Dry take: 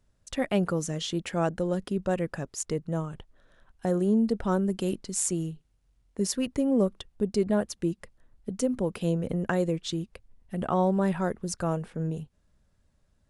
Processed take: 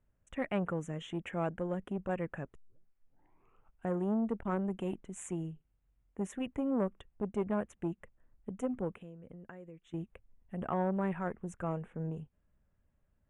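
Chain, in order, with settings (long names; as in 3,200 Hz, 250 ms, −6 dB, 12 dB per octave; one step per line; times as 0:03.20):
dynamic equaliser 2,100 Hz, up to +4 dB, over −46 dBFS, Q 1.4
0:02.55: tape start 1.32 s
0:08.93–0:09.94: downward compressor 3 to 1, threshold −46 dBFS, peak gain reduction 18 dB
Butterworth band-reject 4,700 Hz, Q 1
high-frequency loss of the air 82 metres
saturating transformer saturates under 460 Hz
level −6.5 dB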